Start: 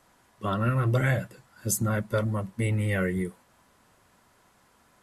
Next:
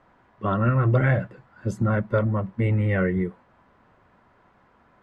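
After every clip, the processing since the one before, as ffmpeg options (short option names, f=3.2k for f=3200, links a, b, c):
-af "lowpass=1.9k,volume=4.5dB"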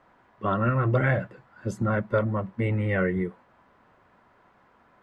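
-af "lowshelf=f=200:g=-6"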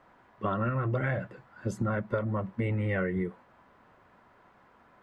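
-af "acompressor=threshold=-26dB:ratio=6"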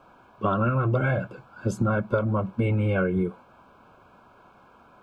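-af "asuperstop=centerf=1900:order=20:qfactor=4.1,volume=6dB"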